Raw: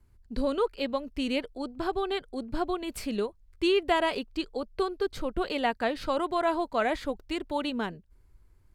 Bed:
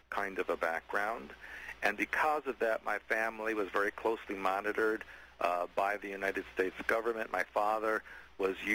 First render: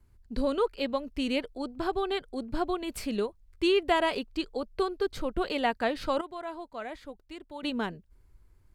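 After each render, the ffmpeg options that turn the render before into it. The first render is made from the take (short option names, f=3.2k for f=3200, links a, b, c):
-filter_complex "[0:a]asplit=3[a][b][c];[a]atrim=end=6.212[d];[b]atrim=start=6.208:end=7.632,asetpts=PTS-STARTPTS,volume=-11.5dB[e];[c]atrim=start=7.628[f];[d][e]acrossfade=d=0.004:c1=hsin:c2=hsin[g];[g][f]acrossfade=d=0.004:c1=hsin:c2=hsin"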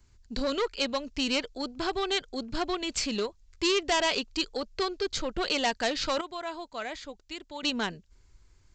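-af "aresample=16000,asoftclip=type=tanh:threshold=-23.5dB,aresample=44100,crystalizer=i=6:c=0"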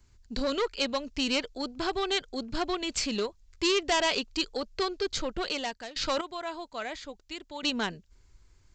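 -filter_complex "[0:a]asplit=2[a][b];[a]atrim=end=5.96,asetpts=PTS-STARTPTS,afade=t=out:st=5.24:d=0.72:silence=0.1[c];[b]atrim=start=5.96,asetpts=PTS-STARTPTS,afade=t=in:d=0.004:c=hsin:silence=0.1[d];[c][d]concat=n=2:v=0:a=1"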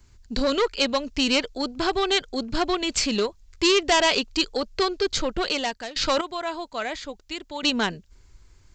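-af "volume=6.5dB"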